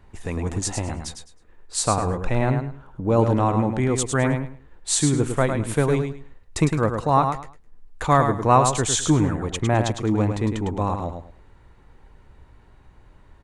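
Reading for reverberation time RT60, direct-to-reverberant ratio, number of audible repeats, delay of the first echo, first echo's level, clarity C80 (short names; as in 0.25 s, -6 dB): none, none, 3, 0.105 s, -6.5 dB, none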